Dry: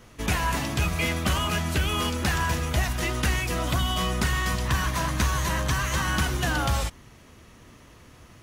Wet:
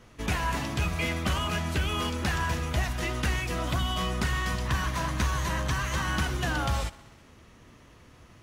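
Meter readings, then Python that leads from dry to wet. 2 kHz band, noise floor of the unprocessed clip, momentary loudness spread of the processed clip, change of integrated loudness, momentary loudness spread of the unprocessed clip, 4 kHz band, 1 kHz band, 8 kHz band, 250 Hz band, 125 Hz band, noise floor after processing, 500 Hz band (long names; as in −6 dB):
−3.5 dB, −51 dBFS, 2 LU, −3.5 dB, 2 LU, −4.0 dB, −3.0 dB, −6.0 dB, −3.0 dB, −3.0 dB, −54 dBFS, −3.0 dB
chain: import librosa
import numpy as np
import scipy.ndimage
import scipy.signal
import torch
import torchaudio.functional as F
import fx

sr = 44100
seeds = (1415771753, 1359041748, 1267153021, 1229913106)

y = fx.high_shelf(x, sr, hz=8000.0, db=-7.5)
y = fx.echo_thinned(y, sr, ms=64, feedback_pct=74, hz=160.0, wet_db=-21.0)
y = y * librosa.db_to_amplitude(-3.0)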